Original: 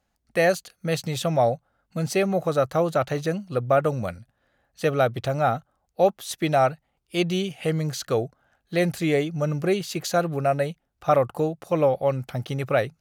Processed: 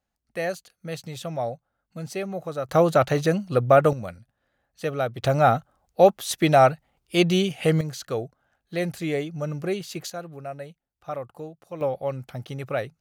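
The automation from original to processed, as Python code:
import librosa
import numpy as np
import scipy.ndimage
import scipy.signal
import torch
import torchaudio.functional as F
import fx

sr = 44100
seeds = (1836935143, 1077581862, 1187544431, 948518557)

y = fx.gain(x, sr, db=fx.steps((0.0, -8.0), (2.69, 4.0), (3.93, -5.0), (5.23, 4.0), (7.81, -4.5), (10.1, -13.0), (11.81, -5.5)))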